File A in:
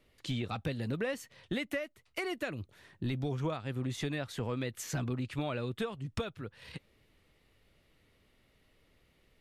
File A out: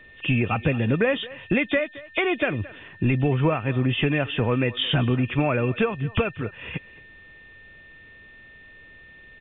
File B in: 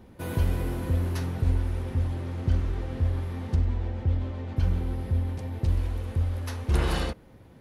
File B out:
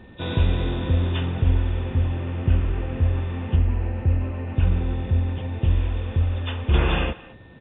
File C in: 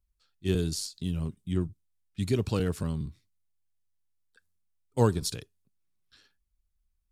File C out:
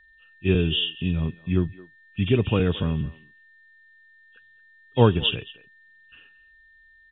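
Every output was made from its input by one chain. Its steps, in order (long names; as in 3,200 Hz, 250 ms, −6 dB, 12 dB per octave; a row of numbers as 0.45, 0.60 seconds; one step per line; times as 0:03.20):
hearing-aid frequency compression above 2,400 Hz 4 to 1
steady tone 1,800 Hz −60 dBFS
far-end echo of a speakerphone 220 ms, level −18 dB
loudness normalisation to −24 LKFS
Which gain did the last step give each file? +13.0, +5.0, +6.5 decibels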